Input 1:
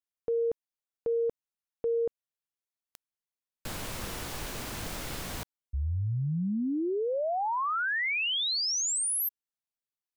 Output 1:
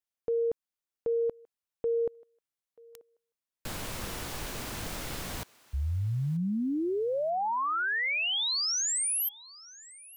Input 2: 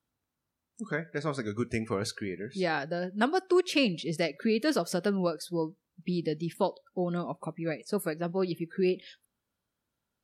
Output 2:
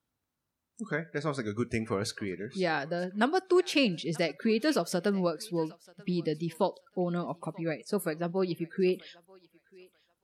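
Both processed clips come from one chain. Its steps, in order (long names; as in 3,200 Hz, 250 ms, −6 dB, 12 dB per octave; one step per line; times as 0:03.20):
feedback echo with a high-pass in the loop 935 ms, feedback 25%, high-pass 680 Hz, level −21 dB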